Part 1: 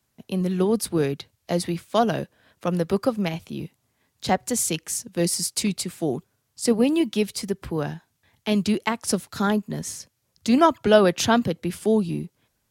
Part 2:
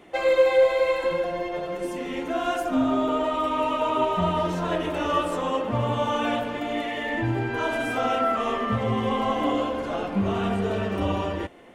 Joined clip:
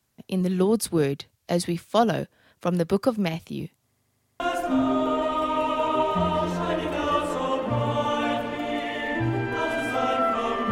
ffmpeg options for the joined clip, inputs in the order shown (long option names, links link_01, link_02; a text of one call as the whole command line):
ffmpeg -i cue0.wav -i cue1.wav -filter_complex "[0:a]apad=whole_dur=10.71,atrim=end=10.71,asplit=7[link_01][link_02][link_03][link_04][link_05][link_06][link_07];[link_01]atrim=end=3.922[link_08];[link_02]atrim=start=3.838:end=3.922[link_09];[link_03]atrim=start=3.838:end=3.922[link_10];[link_04]atrim=start=3.838:end=3.922[link_11];[link_05]atrim=start=3.838:end=3.922[link_12];[link_06]atrim=start=3.838:end=3.922[link_13];[link_07]atrim=start=3.838:end=3.922[link_14];[1:a]atrim=start=2.418:end=8.73[link_15];[link_08][link_09]acrossfade=duration=0.004:curve1=hsin:curve2=hsin[link_16];[link_16][link_10]acrossfade=duration=0.004:curve1=hsin:curve2=hsin[link_17];[link_17][link_11]acrossfade=duration=0.004:curve1=hsin:curve2=hsin[link_18];[link_18][link_12]acrossfade=duration=0.004:curve1=hsin:curve2=hsin[link_19];[link_19][link_13]acrossfade=duration=0.004:curve1=hsin:curve2=hsin[link_20];[link_20][link_14]acrossfade=duration=0.004:curve1=hsin:curve2=hsin[link_21];[link_21][link_15]acrossfade=duration=0.004:curve1=hsin:curve2=hsin" out.wav